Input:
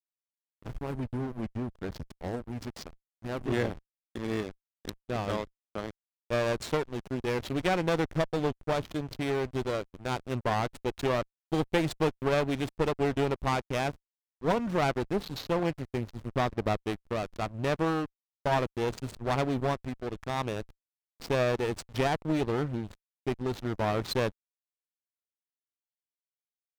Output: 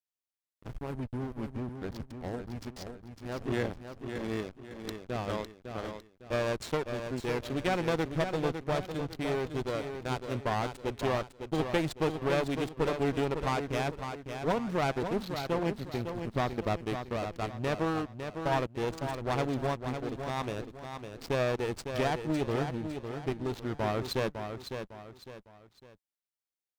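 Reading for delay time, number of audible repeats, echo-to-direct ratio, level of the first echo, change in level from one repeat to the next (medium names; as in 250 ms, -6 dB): 555 ms, 3, -7.0 dB, -7.5 dB, -9.0 dB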